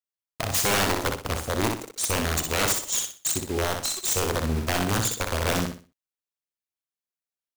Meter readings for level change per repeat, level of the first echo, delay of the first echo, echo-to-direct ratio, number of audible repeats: -10.5 dB, -5.0 dB, 62 ms, -4.5 dB, 3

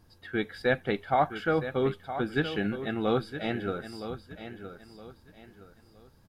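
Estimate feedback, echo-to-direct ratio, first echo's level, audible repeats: 31%, -10.5 dB, -11.0 dB, 3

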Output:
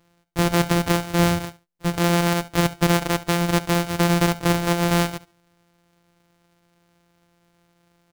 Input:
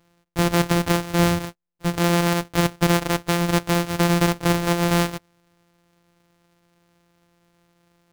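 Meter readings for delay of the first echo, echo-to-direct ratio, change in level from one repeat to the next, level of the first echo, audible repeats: 71 ms, -18.0 dB, -14.5 dB, -18.0 dB, 2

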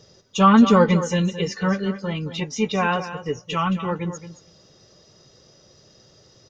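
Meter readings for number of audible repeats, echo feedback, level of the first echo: 2, no regular repeats, -12.0 dB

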